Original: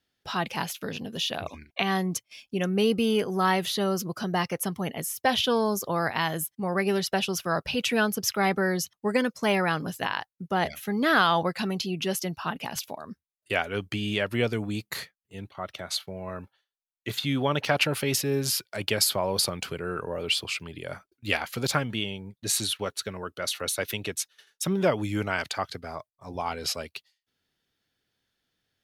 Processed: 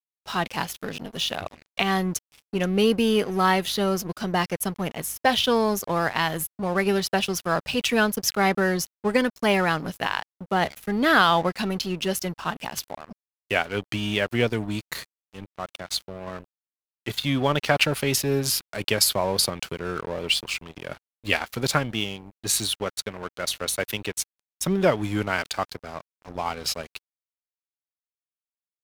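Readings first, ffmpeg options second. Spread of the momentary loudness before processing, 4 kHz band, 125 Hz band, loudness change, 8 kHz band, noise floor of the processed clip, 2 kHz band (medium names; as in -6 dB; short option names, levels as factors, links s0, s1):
12 LU, +2.5 dB, +2.0 dB, +3.0 dB, +2.5 dB, under -85 dBFS, +3.0 dB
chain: -af "aeval=exprs='val(0)+0.00178*(sin(2*PI*50*n/s)+sin(2*PI*2*50*n/s)/2+sin(2*PI*3*50*n/s)/3+sin(2*PI*4*50*n/s)/4+sin(2*PI*5*50*n/s)/5)':c=same,aeval=exprs='sgn(val(0))*max(abs(val(0))-0.00891,0)':c=same,volume=1.58"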